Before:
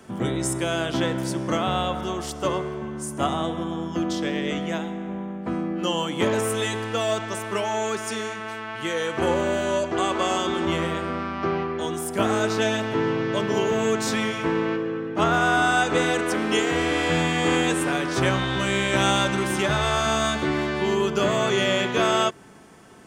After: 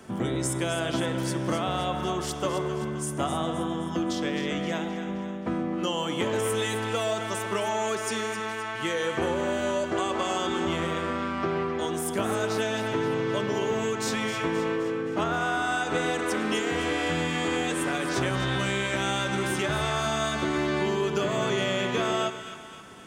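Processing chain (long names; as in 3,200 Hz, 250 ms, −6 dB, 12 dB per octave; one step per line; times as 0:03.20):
downward compressor, threshold −24 dBFS, peak gain reduction 8 dB
on a send: echo with a time of its own for lows and highs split 980 Hz, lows 129 ms, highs 262 ms, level −10 dB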